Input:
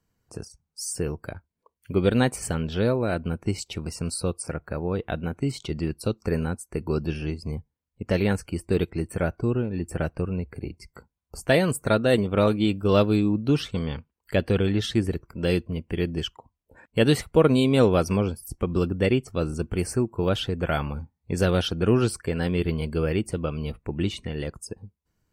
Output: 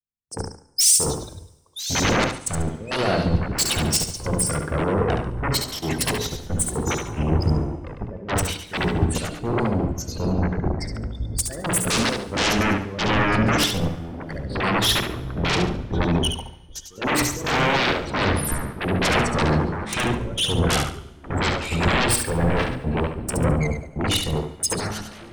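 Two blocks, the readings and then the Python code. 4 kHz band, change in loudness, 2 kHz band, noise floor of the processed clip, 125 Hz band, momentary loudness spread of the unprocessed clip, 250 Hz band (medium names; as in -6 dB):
+9.5 dB, +3.0 dB, +8.0 dB, -44 dBFS, +2.0 dB, 13 LU, 0.0 dB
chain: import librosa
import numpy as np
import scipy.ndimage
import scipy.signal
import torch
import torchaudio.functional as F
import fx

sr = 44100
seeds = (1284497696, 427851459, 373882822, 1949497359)

p1 = scipy.signal.sosfilt(scipy.signal.butter(2, 11000.0, 'lowpass', fs=sr, output='sos'), x)
p2 = fx.spec_gate(p1, sr, threshold_db=-15, keep='strong')
p3 = fx.high_shelf(p2, sr, hz=5300.0, db=6.5)
p4 = fx.hum_notches(p3, sr, base_hz=60, count=8)
p5 = fx.level_steps(p4, sr, step_db=12)
p6 = fx.step_gate(p5, sr, bpm=67, pattern='xx.xx.xxxx.x.', floor_db=-24.0, edge_ms=4.5)
p7 = fx.fold_sine(p6, sr, drive_db=20, ceiling_db=-14.5)
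p8 = p7 + fx.echo_feedback(p7, sr, ms=71, feedback_pct=41, wet_db=-5.0, dry=0)
p9 = fx.echo_pitch(p8, sr, ms=654, semitones=-6, count=2, db_per_echo=-6.0)
p10 = fx.rev_plate(p9, sr, seeds[0], rt60_s=3.7, hf_ratio=0.95, predelay_ms=0, drr_db=14.0)
p11 = fx.band_widen(p10, sr, depth_pct=100)
y = p11 * librosa.db_to_amplitude(-5.0)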